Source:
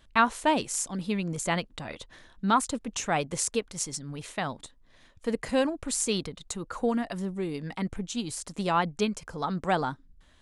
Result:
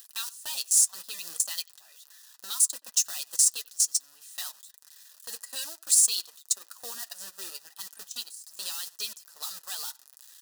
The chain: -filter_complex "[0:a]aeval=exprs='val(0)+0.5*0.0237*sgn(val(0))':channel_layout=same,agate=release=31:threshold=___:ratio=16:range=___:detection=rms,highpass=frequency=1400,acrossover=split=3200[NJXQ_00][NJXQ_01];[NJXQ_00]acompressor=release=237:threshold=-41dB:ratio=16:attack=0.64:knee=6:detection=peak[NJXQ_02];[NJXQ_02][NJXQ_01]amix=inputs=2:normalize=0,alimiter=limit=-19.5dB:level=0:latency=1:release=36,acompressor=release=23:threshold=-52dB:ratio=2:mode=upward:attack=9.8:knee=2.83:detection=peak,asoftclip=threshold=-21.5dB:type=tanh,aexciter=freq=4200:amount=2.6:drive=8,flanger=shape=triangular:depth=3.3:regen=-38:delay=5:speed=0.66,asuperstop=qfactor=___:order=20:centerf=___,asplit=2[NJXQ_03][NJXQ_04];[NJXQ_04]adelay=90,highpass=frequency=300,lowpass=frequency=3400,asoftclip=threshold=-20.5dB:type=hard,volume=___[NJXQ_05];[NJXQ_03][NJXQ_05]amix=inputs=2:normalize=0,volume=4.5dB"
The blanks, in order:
-30dB, -31dB, 5.4, 2200, -24dB